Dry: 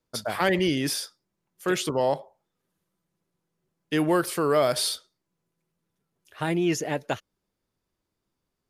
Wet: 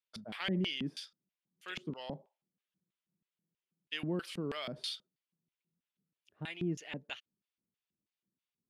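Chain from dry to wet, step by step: LFO band-pass square 3.1 Hz 200–2900 Hz; trim -3 dB

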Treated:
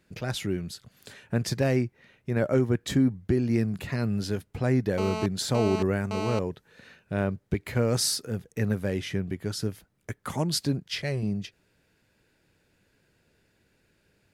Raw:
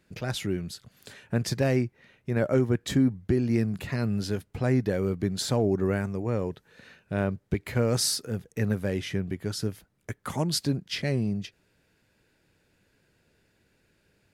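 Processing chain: 4.98–6.39 s: mobile phone buzz -32 dBFS; 10.82–11.23 s: peaking EQ 240 Hz -13 dB 0.68 oct

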